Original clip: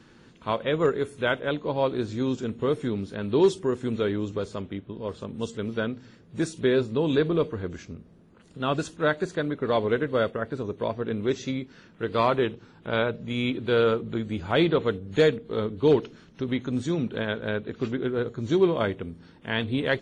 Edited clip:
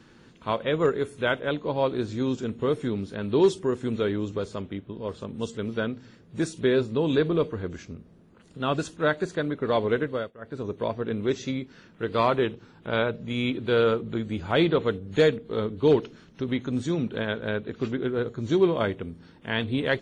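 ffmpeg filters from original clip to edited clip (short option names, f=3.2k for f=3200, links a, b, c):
-filter_complex "[0:a]asplit=3[a][b][c];[a]atrim=end=10.32,asetpts=PTS-STARTPTS,afade=t=out:st=10.02:d=0.3:silence=0.112202[d];[b]atrim=start=10.32:end=10.36,asetpts=PTS-STARTPTS,volume=-19dB[e];[c]atrim=start=10.36,asetpts=PTS-STARTPTS,afade=t=in:d=0.3:silence=0.112202[f];[d][e][f]concat=n=3:v=0:a=1"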